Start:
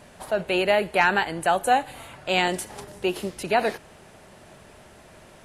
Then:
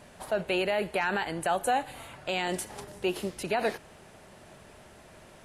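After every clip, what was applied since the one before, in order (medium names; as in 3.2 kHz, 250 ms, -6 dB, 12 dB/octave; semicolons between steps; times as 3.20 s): peak limiter -14.5 dBFS, peak gain reduction 8.5 dB; trim -3 dB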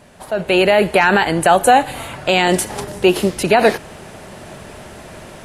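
peaking EQ 180 Hz +2 dB 3 oct; level rider gain up to 11 dB; trim +4.5 dB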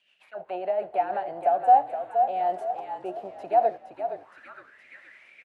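rotary cabinet horn 7 Hz, later 1.2 Hz, at 0.81 s; frequency-shifting echo 467 ms, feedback 47%, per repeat -43 Hz, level -7.5 dB; auto-wah 720–3000 Hz, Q 9, down, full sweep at -18.5 dBFS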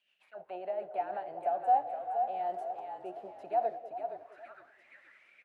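repeats whose band climbs or falls 193 ms, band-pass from 440 Hz, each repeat 0.7 oct, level -9.5 dB; trim -9 dB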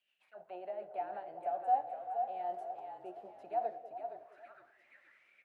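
reverberation RT60 0.45 s, pre-delay 3 ms, DRR 12 dB; trim -5.5 dB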